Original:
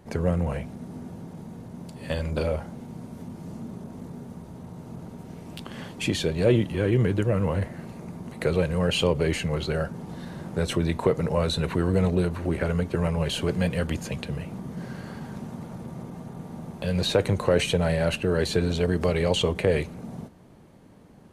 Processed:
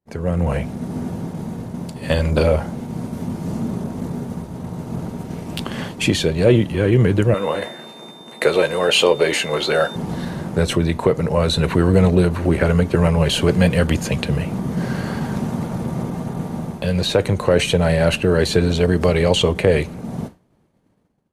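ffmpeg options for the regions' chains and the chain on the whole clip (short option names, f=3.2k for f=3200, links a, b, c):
-filter_complex "[0:a]asettb=1/sr,asplit=3[a][b][c];[a]atrim=end=7.344[d];[b]atrim=start=7.34:end=9.96,asetpts=PTS-STARTPTS,afade=t=in:d=0.004:c=qsin,afade=t=out:st=2.616:d=0.004:c=qsin,highpass=370,asplit=2[e][f];[f]adelay=14,volume=-8.5dB[g];[e][g]amix=inputs=2:normalize=0,atrim=end_sample=115542,aeval=exprs='val(0)+0.00501*sin(2*PI*3600*n/s)':c=same[h];[c]atrim=start=9.956[i];[d][h]acrossfade=d=0.004:c1=hsin:c2=qsin[j];[j][i]acrossfade=d=0.004:c1=qsin:c2=hsin,agate=range=-33dB:threshold=-37dB:ratio=3:detection=peak,dynaudnorm=f=110:g=7:m=14.5dB,volume=-1dB"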